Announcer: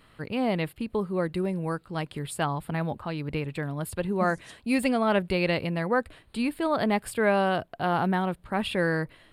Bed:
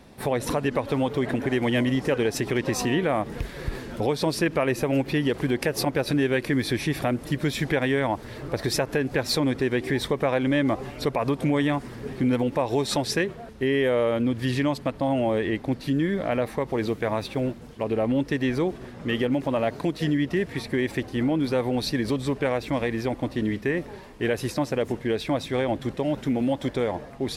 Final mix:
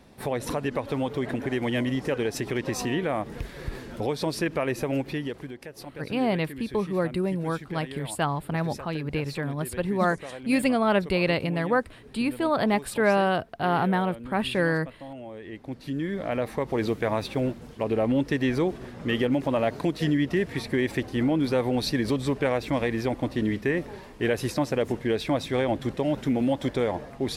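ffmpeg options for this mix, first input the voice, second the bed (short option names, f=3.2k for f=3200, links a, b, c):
-filter_complex "[0:a]adelay=5800,volume=1.5dB[a];[1:a]volume=13dB,afade=t=out:st=4.93:d=0.62:silence=0.223872,afade=t=in:st=15.4:d=1.42:silence=0.149624[b];[a][b]amix=inputs=2:normalize=0"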